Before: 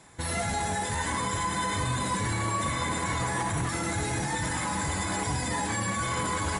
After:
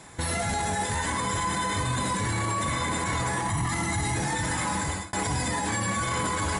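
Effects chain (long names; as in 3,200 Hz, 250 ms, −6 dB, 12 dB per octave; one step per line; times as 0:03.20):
0:03.48–0:04.16: comb filter 1 ms, depth 62%
0:04.71–0:05.13: fade out
brickwall limiter −25.5 dBFS, peak gain reduction 9.5 dB
level +6.5 dB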